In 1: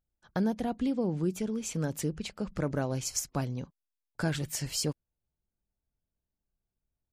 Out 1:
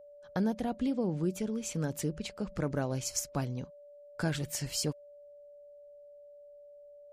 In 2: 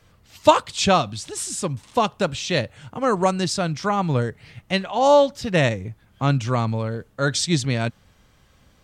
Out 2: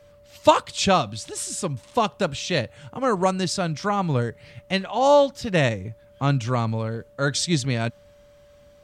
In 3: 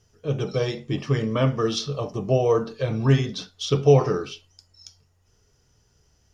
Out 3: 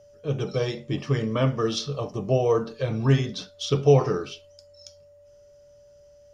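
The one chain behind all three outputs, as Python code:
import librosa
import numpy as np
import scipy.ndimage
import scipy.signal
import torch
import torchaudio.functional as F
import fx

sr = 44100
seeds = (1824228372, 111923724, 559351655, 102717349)

y = x + 10.0 ** (-49.0 / 20.0) * np.sin(2.0 * np.pi * 580.0 * np.arange(len(x)) / sr)
y = F.gain(torch.from_numpy(y), -1.5).numpy()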